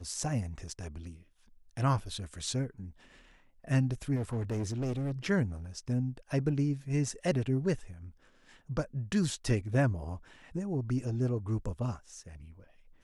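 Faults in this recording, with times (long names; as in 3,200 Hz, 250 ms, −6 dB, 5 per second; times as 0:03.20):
0:04.15–0:05.12: clipping −29.5 dBFS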